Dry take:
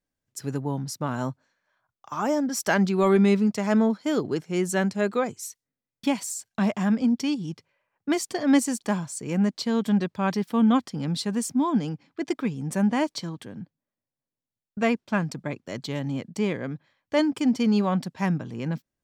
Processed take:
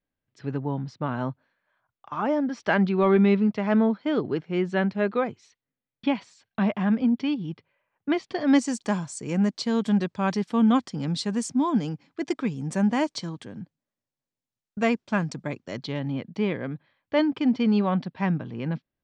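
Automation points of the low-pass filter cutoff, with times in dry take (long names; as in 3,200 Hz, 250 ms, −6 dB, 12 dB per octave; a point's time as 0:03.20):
low-pass filter 24 dB per octave
0:08.23 3,600 Hz
0:08.79 8,200 Hz
0:15.50 8,200 Hz
0:16.04 4,000 Hz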